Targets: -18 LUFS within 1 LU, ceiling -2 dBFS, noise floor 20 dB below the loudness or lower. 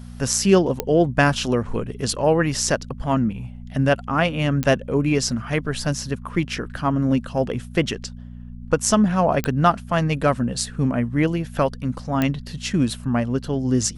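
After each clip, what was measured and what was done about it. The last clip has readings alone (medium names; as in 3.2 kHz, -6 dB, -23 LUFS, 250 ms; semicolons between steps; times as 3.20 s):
clicks found 4; hum 60 Hz; highest harmonic 240 Hz; hum level -35 dBFS; loudness -21.5 LUFS; peak level -2.5 dBFS; loudness target -18.0 LUFS
-> de-click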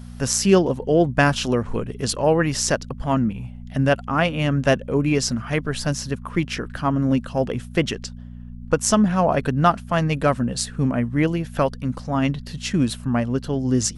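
clicks found 0; hum 60 Hz; highest harmonic 240 Hz; hum level -35 dBFS
-> de-hum 60 Hz, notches 4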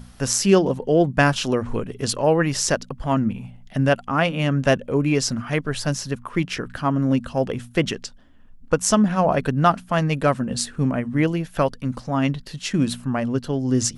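hum not found; loudness -22.0 LUFS; peak level -2.5 dBFS; loudness target -18.0 LUFS
-> trim +4 dB; peak limiter -2 dBFS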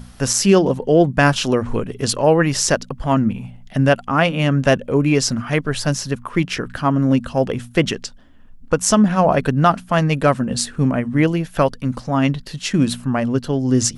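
loudness -18.0 LUFS; peak level -2.0 dBFS; noise floor -42 dBFS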